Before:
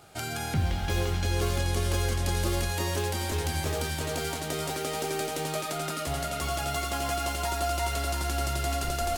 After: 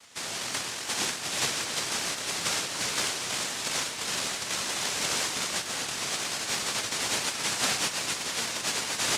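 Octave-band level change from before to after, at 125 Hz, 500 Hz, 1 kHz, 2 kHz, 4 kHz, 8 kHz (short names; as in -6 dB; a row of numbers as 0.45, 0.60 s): -17.0, -7.5, -4.0, +4.0, +6.5, +7.0 dB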